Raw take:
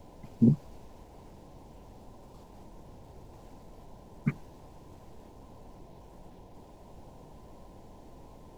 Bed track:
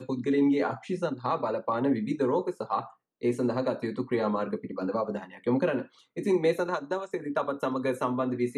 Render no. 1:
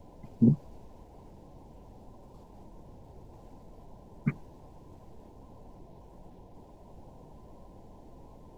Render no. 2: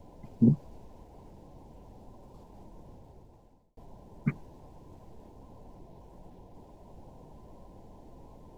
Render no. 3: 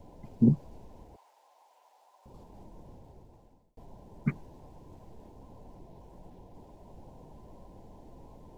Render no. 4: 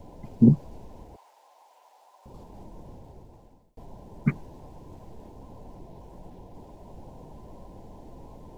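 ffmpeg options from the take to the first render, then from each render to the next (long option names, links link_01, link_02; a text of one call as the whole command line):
ffmpeg -i in.wav -af "afftdn=noise_reduction=6:noise_floor=-53" out.wav
ffmpeg -i in.wav -filter_complex "[0:a]asplit=2[link_01][link_02];[link_01]atrim=end=3.77,asetpts=PTS-STARTPTS,afade=type=out:start_time=2.91:duration=0.86[link_03];[link_02]atrim=start=3.77,asetpts=PTS-STARTPTS,afade=type=in:duration=0.004:curve=hsin[link_04];[link_03][link_04]concat=n=2:v=0:a=1" out.wav
ffmpeg -i in.wav -filter_complex "[0:a]asettb=1/sr,asplit=3[link_01][link_02][link_03];[link_01]atrim=end=1.164[link_04];[link_02]atrim=start=1.16:end=2.26,asetpts=PTS-STARTPTS,afade=type=in:duration=0.004:curve=qsin,afade=type=out:start_time=1.096:duration=0.004:curve=qsin,highpass=frequency=770:width=0.5412,highpass=frequency=770:width=1.3066[link_05];[link_03]atrim=start=2.256[link_06];[link_04][link_05]acrossfade=duration=0.004:curve1=hsin:curve2=qsin[link_07];[link_07][link_06]acrossfade=duration=0.004:curve1=qsin:curve2=hsin" out.wav
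ffmpeg -i in.wav -af "volume=5.5dB" out.wav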